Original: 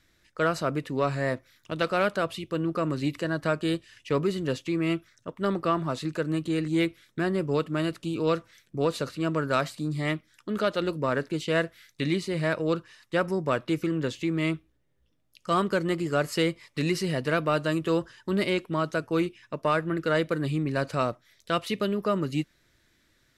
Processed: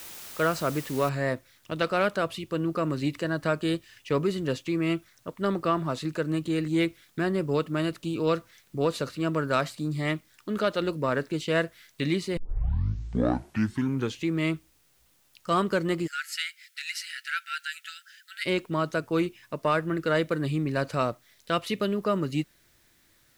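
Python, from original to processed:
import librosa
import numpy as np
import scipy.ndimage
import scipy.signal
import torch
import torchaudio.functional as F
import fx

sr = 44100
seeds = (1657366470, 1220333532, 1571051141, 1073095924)

y = fx.noise_floor_step(x, sr, seeds[0], at_s=1.09, before_db=-43, after_db=-66, tilt_db=0.0)
y = fx.brickwall_highpass(y, sr, low_hz=1300.0, at=(16.06, 18.45), fade=0.02)
y = fx.edit(y, sr, fx.tape_start(start_s=12.37, length_s=1.88), tone=tone)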